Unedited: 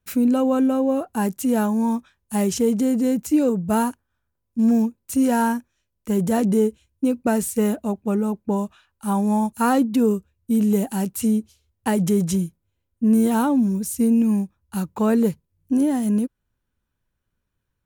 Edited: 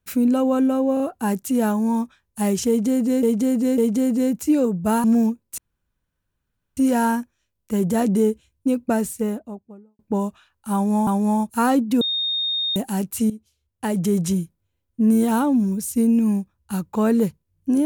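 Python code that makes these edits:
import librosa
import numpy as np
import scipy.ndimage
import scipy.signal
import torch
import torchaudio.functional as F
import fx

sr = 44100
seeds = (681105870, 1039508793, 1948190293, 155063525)

y = fx.studio_fade_out(x, sr, start_s=7.14, length_s=1.22)
y = fx.edit(y, sr, fx.stutter(start_s=0.94, slice_s=0.03, count=3),
    fx.repeat(start_s=2.62, length_s=0.55, count=3),
    fx.cut(start_s=3.88, length_s=0.72),
    fx.insert_room_tone(at_s=5.14, length_s=1.19),
    fx.repeat(start_s=9.1, length_s=0.34, count=2),
    fx.bleep(start_s=10.04, length_s=0.75, hz=3690.0, db=-20.5),
    fx.fade_in_from(start_s=11.33, length_s=0.91, floor_db=-15.0), tone=tone)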